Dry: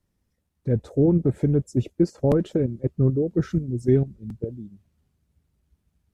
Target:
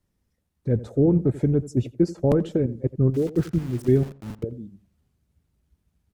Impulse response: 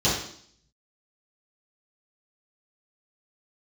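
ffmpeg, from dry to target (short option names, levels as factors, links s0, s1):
-filter_complex "[0:a]asettb=1/sr,asplit=3[s0][s1][s2];[s0]atrim=end=3.144[s3];[s1]atrim=start=3.14:end=4.43,asetpts=PTS-STARTPTS,afade=t=in:d=0.004:c=qsin,afade=t=out:st=1.286:d=0.004:c=qsin,aeval=exprs='val(0)*gte(abs(val(0)),0.015)':c=same[s4];[s2]atrim=start=4.426[s5];[s3][s4]acrossfade=d=0.004:c1=hsin:c2=qsin[s6];[s6][s5]acrossfade=d=0.004:c1=qsin:c2=hsin,asplit=2[s7][s8];[s8]adelay=86,lowpass=f=1400:p=1,volume=0.15,asplit=2[s9][s10];[s10]adelay=86,lowpass=f=1400:p=1,volume=0.23[s11];[s7][s9][s11]amix=inputs=3:normalize=0"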